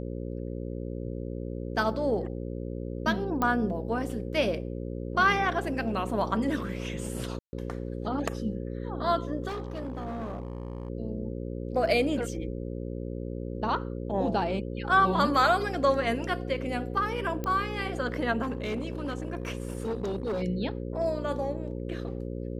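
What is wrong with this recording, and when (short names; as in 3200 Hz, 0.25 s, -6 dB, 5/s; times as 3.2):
buzz 60 Hz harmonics 9 -35 dBFS
3.42 pop -15 dBFS
7.39–7.53 gap 0.14 s
9.47–10.9 clipped -30.5 dBFS
17.44 pop -19 dBFS
18.42–20.43 clipped -27 dBFS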